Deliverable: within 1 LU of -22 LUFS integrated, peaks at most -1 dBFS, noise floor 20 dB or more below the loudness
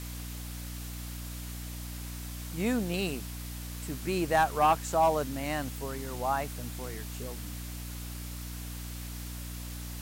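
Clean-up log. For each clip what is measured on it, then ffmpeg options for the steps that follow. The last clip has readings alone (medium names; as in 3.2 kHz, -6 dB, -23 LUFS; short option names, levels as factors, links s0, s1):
hum 60 Hz; highest harmonic 300 Hz; hum level -38 dBFS; noise floor -40 dBFS; noise floor target -53 dBFS; loudness -33.0 LUFS; peak level -15.5 dBFS; loudness target -22.0 LUFS
-> -af "bandreject=f=60:t=h:w=6,bandreject=f=120:t=h:w=6,bandreject=f=180:t=h:w=6,bandreject=f=240:t=h:w=6,bandreject=f=300:t=h:w=6"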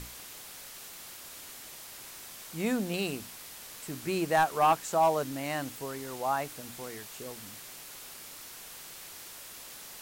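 hum not found; noise floor -47 dBFS; noise floor target -54 dBFS
-> -af "afftdn=nr=7:nf=-47"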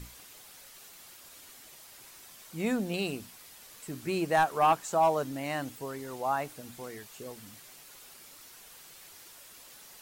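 noise floor -52 dBFS; loudness -31.0 LUFS; peak level -16.0 dBFS; loudness target -22.0 LUFS
-> -af "volume=2.82"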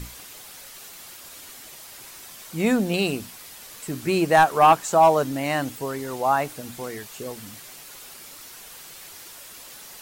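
loudness -22.0 LUFS; peak level -7.0 dBFS; noise floor -43 dBFS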